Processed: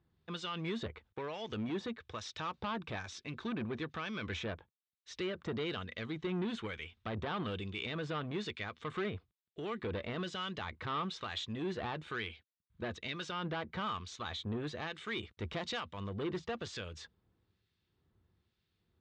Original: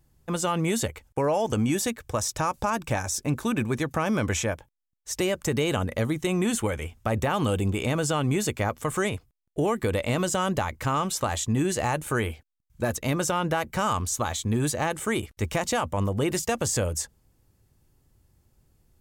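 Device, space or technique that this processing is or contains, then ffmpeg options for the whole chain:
guitar amplifier with harmonic tremolo: -filter_complex "[0:a]acrossover=split=1700[a][b];[a]aeval=exprs='val(0)*(1-0.7/2+0.7/2*cos(2*PI*1.1*n/s))':c=same[c];[b]aeval=exprs='val(0)*(1-0.7/2-0.7/2*cos(2*PI*1.1*n/s))':c=same[d];[c][d]amix=inputs=2:normalize=0,asoftclip=type=tanh:threshold=-26dB,highpass=100,equalizer=f=130:t=q:w=4:g=-9,equalizer=f=270:t=q:w=4:g=-7,equalizer=f=570:t=q:w=4:g=-8,equalizer=f=830:t=q:w=4:g=-6,equalizer=f=3.7k:t=q:w=4:g=7,lowpass=f=4.1k:w=0.5412,lowpass=f=4.1k:w=1.3066,asettb=1/sr,asplit=3[e][f][g];[e]atrim=end=15.174[h];[f]atrim=start=15.17:end=15.8,asetpts=PTS-STARTPTS,afade=t=in:d=0.004:c=qsin,afade=t=out:st=0.626:d=0.004:c=qsin,highshelf=f=7k:g=10.5[i];[g]atrim=start=15.796[j];[h][i]acrossfade=d=0.004:c1=hsin:c2=qsin[k];[k][j]acrossfade=d=0.004:c1=qsin:c2=hsin,volume=-3dB"

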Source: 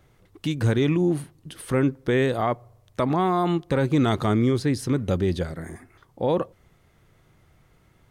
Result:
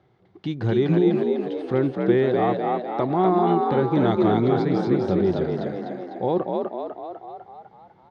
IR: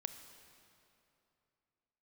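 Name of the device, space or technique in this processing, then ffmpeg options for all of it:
frequency-shifting delay pedal into a guitar cabinet: -filter_complex "[0:a]asplit=9[a][b][c][d][e][f][g][h][i];[b]adelay=250,afreqshift=56,volume=-3dB[j];[c]adelay=500,afreqshift=112,volume=-8dB[k];[d]adelay=750,afreqshift=168,volume=-13.1dB[l];[e]adelay=1000,afreqshift=224,volume=-18.1dB[m];[f]adelay=1250,afreqshift=280,volume=-23.1dB[n];[g]adelay=1500,afreqshift=336,volume=-28.2dB[o];[h]adelay=1750,afreqshift=392,volume=-33.2dB[p];[i]adelay=2000,afreqshift=448,volume=-38.3dB[q];[a][j][k][l][m][n][o][p][q]amix=inputs=9:normalize=0,highpass=100,equalizer=f=120:t=q:w=4:g=4,equalizer=f=190:t=q:w=4:g=5,equalizer=f=370:t=q:w=4:g=9,equalizer=f=770:t=q:w=4:g=9,equalizer=f=2.6k:t=q:w=4:g=-5,lowpass=f=4.5k:w=0.5412,lowpass=f=4.5k:w=1.3066,volume=-4.5dB"

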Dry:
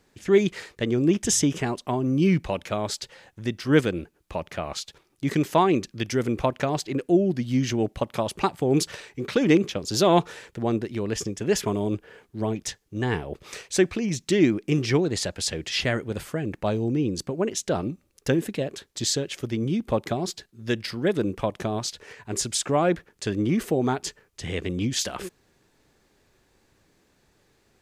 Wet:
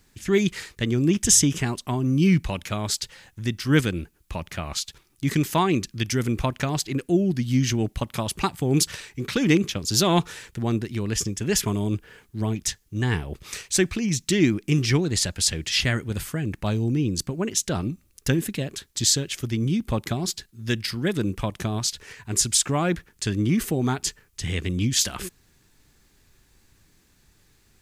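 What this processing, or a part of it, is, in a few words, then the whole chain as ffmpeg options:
smiley-face EQ: -af "lowshelf=f=84:g=9,equalizer=f=550:t=o:w=1.5:g=-9,highshelf=f=7.4k:g=9,volume=2.5dB"

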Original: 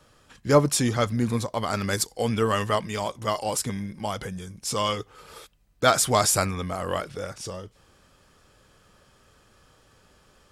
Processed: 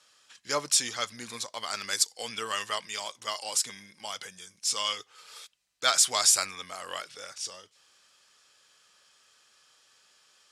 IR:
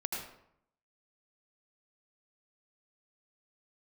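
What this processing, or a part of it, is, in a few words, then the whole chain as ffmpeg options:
piezo pickup straight into a mixer: -af "lowpass=5.8k,aderivative,volume=8.5dB"

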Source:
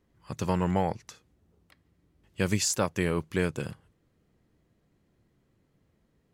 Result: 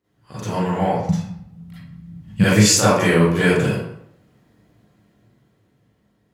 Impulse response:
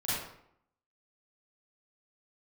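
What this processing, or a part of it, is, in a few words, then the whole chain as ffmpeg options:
far laptop microphone: -filter_complex "[1:a]atrim=start_sample=2205[a];[0:a][a]afir=irnorm=-1:irlink=0,highpass=f=150:p=1,dynaudnorm=f=280:g=11:m=11.5dB,asettb=1/sr,asplit=3[b][c][d];[b]atrim=end=1.094[e];[c]atrim=start=1.09:end=2.44,asetpts=PTS-STARTPTS,afade=t=in:d=0.004:c=qsin,afade=t=out:st=1.346:d=0.004:c=qsin,lowshelf=f=260:t=q:w=3:g=12.5[f];[d]atrim=start=2.436[g];[e][f]acrossfade=d=0.004:c1=hsin:c2=qsin[h];[h][g]acrossfade=d=0.004:c1=qsin:c2=hsin"

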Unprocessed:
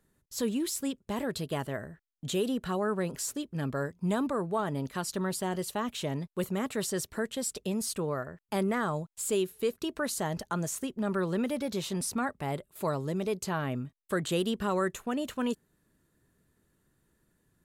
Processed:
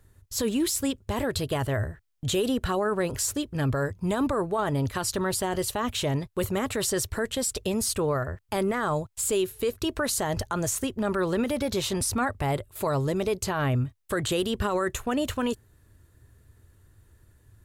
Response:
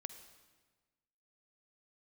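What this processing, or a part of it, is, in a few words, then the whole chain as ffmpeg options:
car stereo with a boomy subwoofer: -af "lowshelf=f=130:t=q:w=3:g=9,alimiter=level_in=2dB:limit=-24dB:level=0:latency=1:release=29,volume=-2dB,volume=8dB"

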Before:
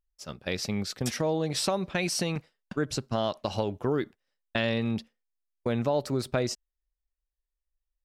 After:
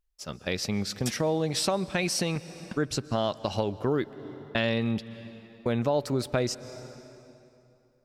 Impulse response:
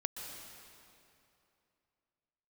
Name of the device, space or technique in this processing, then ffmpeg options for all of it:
ducked reverb: -filter_complex "[0:a]asplit=3[a][b][c];[1:a]atrim=start_sample=2205[d];[b][d]afir=irnorm=-1:irlink=0[e];[c]apad=whole_len=354740[f];[e][f]sidechaincompress=threshold=-35dB:ratio=4:attack=5.8:release=313,volume=-7dB[g];[a][g]amix=inputs=2:normalize=0"

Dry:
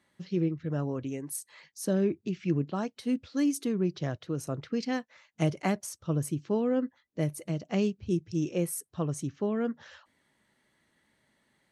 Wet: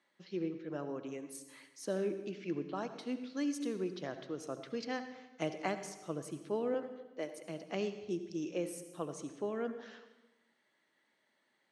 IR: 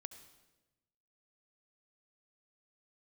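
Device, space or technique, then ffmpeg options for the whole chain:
supermarket ceiling speaker: -filter_complex "[0:a]asettb=1/sr,asplit=3[a][b][c];[a]atrim=end=6.744[d];[b]atrim=start=6.74:end=7.47,asetpts=PTS-STARTPTS,afade=t=in:d=0.004:c=qsin,afade=t=out:st=0.726:d=0.004:c=qsin,highpass=310[e];[c]atrim=start=7.466[f];[d][e]acrossfade=d=0.004:c1=hsin:c2=qsin[g];[g][f]acrossfade=d=0.004:c1=qsin:c2=hsin,highpass=330,lowpass=6.5k[h];[1:a]atrim=start_sample=2205[i];[h][i]afir=irnorm=-1:irlink=0,volume=1dB"

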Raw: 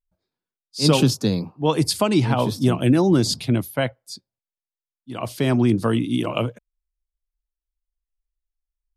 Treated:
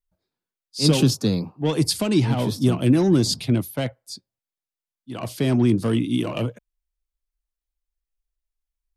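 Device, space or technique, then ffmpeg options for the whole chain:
one-band saturation: -filter_complex "[0:a]acrossover=split=450|2900[a][b][c];[b]asoftclip=type=tanh:threshold=-29dB[d];[a][d][c]amix=inputs=3:normalize=0"

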